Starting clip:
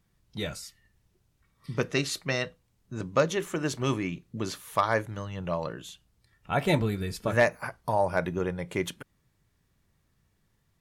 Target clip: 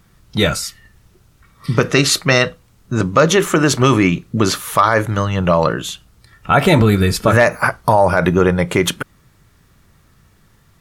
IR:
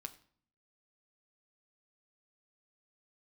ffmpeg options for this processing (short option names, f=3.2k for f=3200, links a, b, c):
-af "equalizer=f=1.3k:t=o:w=0.37:g=6,alimiter=level_in=19dB:limit=-1dB:release=50:level=0:latency=1,volume=-1dB"